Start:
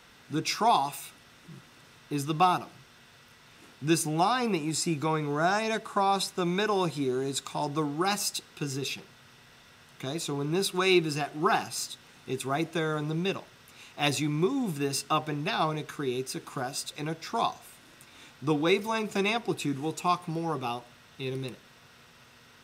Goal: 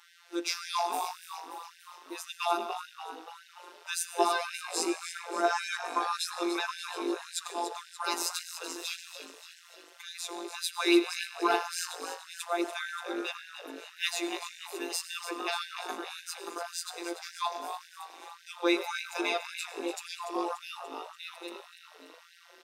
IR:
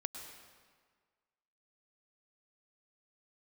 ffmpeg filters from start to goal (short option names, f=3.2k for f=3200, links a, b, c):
-filter_complex "[0:a]asplit=2[a][b];[1:a]atrim=start_sample=2205,asetrate=48510,aresample=44100[c];[b][c]afir=irnorm=-1:irlink=0,volume=2dB[d];[a][d]amix=inputs=2:normalize=0,aeval=exprs='0.473*(cos(1*acos(clip(val(0)/0.473,-1,1)))-cos(1*PI/2))+0.0266*(cos(2*acos(clip(val(0)/0.473,-1,1)))-cos(2*PI/2))+0.0168*(cos(4*acos(clip(val(0)/0.473,-1,1)))-cos(4*PI/2))+0.00473*(cos(7*acos(clip(val(0)/0.473,-1,1)))-cos(7*PI/2))':c=same,afftfilt=real='hypot(re,im)*cos(PI*b)':imag='0':win_size=1024:overlap=0.75,asplit=8[e][f][g][h][i][j][k][l];[f]adelay=290,afreqshift=50,volume=-10.5dB[m];[g]adelay=580,afreqshift=100,volume=-15.4dB[n];[h]adelay=870,afreqshift=150,volume=-20.3dB[o];[i]adelay=1160,afreqshift=200,volume=-25.1dB[p];[j]adelay=1450,afreqshift=250,volume=-30dB[q];[k]adelay=1740,afreqshift=300,volume=-34.9dB[r];[l]adelay=2030,afreqshift=350,volume=-39.8dB[s];[e][m][n][o][p][q][r][s]amix=inputs=8:normalize=0,afftfilt=real='re*gte(b*sr/1024,230*pow(1500/230,0.5+0.5*sin(2*PI*1.8*pts/sr)))':imag='im*gte(b*sr/1024,230*pow(1500/230,0.5+0.5*sin(2*PI*1.8*pts/sr)))':win_size=1024:overlap=0.75,volume=-4dB"